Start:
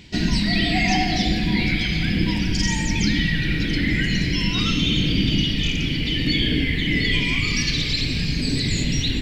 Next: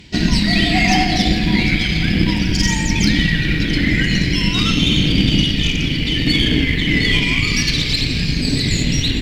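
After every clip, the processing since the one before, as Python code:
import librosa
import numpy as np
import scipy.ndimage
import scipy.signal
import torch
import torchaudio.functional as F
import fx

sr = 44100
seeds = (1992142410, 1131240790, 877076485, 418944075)

y = fx.cheby_harmonics(x, sr, harmonics=(5, 7), levels_db=(-30, -25), full_scale_db=-6.0)
y = y * librosa.db_to_amplitude(5.5)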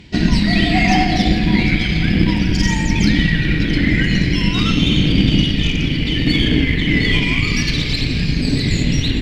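y = fx.high_shelf(x, sr, hz=3500.0, db=-9.0)
y = y * librosa.db_to_amplitude(1.5)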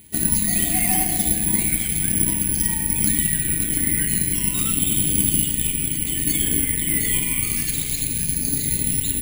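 y = (np.kron(scipy.signal.resample_poly(x, 1, 4), np.eye(4)[0]) * 4)[:len(x)]
y = y * librosa.db_to_amplitude(-12.0)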